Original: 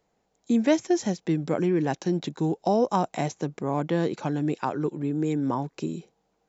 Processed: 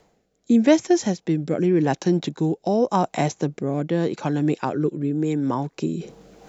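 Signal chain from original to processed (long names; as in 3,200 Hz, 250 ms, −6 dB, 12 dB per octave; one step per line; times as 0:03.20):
reversed playback
upward compression, threshold −32 dBFS
reversed playback
rotating-speaker cabinet horn 0.85 Hz
level +6 dB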